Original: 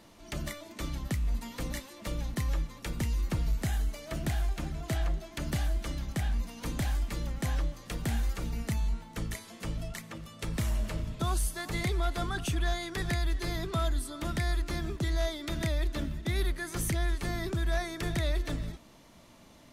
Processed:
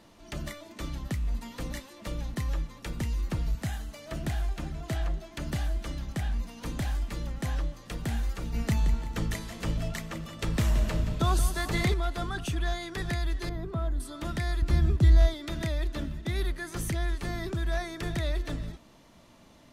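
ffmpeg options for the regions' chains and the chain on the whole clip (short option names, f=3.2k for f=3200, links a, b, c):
-filter_complex "[0:a]asettb=1/sr,asplit=3[a][b][c];[a]atrim=end=3.554[d];[b]atrim=start=3.55:end=4.06,asetpts=PTS-STARTPTS,afade=t=in:d=0.004:c=qsin,afade=t=out:st=0.506:d=0.004:c=qsin,highpass=f=61:w=0.5412,highpass=f=61:w=1.3066,equalizer=f=390:w=2.8:g=-6[e];[c]atrim=start=4.056[f];[d][e]acrossfade=d=0.004:c1=hsin:c2=qsin[g];[g][f]acrossfade=d=0.004:c1=qsin:c2=hsin,asettb=1/sr,asplit=3[h][i][j];[h]atrim=end=8.544[k];[i]atrim=start=8.54:end=11.94,asetpts=PTS-STARTPTS,afade=t=in:d=0.004:c=qsin,afade=t=out:st=3.396:d=0.004:c=qsin,equalizer=f=10k:t=o:w=0.24:g=-4.5,acontrast=28,aecho=1:1:174|348|522|696|870:0.282|0.132|0.0623|0.0293|0.0138,atrim=end_sample=149940[l];[j]atrim=start=11.936[m];[k][l]acrossfade=d=0.004:c1=hsin:c2=qsin[n];[n][m]acrossfade=d=0.004:c1=qsin:c2=hsin,asettb=1/sr,asplit=3[o][p][q];[o]atrim=end=13.494[r];[p]atrim=start=13.49:end=14,asetpts=PTS-STARTPTS,afade=t=in:d=0.004:c=qsin,afade=t=out:st=0.506:d=0.004:c=qsin,acrossover=split=4100[s][t];[t]acompressor=threshold=-56dB:ratio=4:attack=1:release=60[u];[s][u]amix=inputs=2:normalize=0,equalizer=f=3.9k:w=0.37:g=-12.5,asoftclip=type=hard:threshold=-23.5dB[v];[q]atrim=start=13.996[w];[r][v]acrossfade=d=0.004:c1=hsin:c2=qsin[x];[x][w]acrossfade=d=0.004:c1=qsin:c2=hsin,asettb=1/sr,asplit=3[y][z][aa];[y]atrim=end=14.624[ab];[z]atrim=start=14.62:end=15.34,asetpts=PTS-STARTPTS,afade=t=in:d=0.004:c=qsin,afade=t=out:st=0.716:d=0.004:c=qsin,equalizer=f=73:w=0.56:g=14.5,bandreject=f=6.4k:w=23[ac];[aa]atrim=start=15.336[ad];[ab][ac]acrossfade=d=0.004:c1=hsin:c2=qsin[ae];[ae][ad]acrossfade=d=0.004:c1=qsin:c2=hsin,highshelf=f=7.1k:g=-5,bandreject=f=2.2k:w=26"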